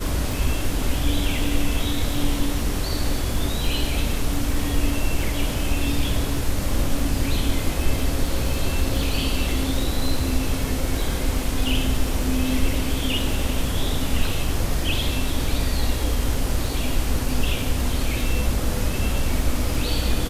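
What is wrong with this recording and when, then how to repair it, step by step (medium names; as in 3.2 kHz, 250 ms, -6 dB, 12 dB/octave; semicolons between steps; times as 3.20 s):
crackle 40 per s -28 dBFS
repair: de-click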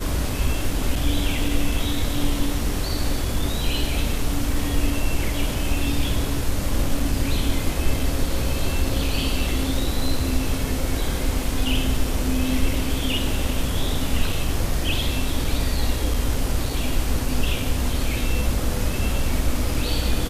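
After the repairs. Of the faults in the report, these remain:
nothing left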